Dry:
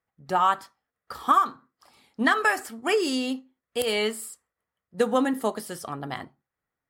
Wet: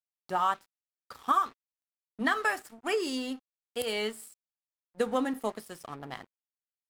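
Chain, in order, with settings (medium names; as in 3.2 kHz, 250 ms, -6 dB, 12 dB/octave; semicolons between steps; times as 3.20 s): 1.32–2.21 s: high-pass 270 Hz -> 95 Hz 24 dB/octave; crossover distortion -42.5 dBFS; trim -5.5 dB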